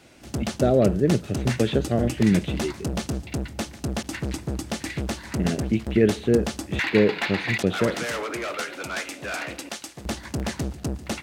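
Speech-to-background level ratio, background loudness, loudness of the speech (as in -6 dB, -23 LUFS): 6.5 dB, -30.0 LUFS, -23.5 LUFS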